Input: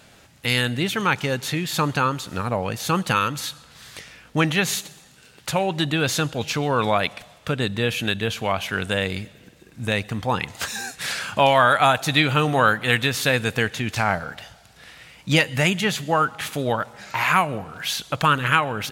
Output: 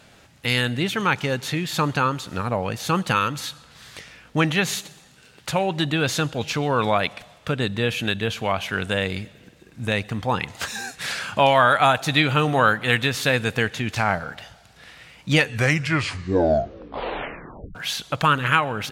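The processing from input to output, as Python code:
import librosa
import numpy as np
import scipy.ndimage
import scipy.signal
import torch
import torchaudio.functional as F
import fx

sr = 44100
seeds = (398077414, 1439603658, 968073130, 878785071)

y = fx.edit(x, sr, fx.tape_stop(start_s=15.3, length_s=2.45), tone=tone)
y = fx.high_shelf(y, sr, hz=7900.0, db=-6.0)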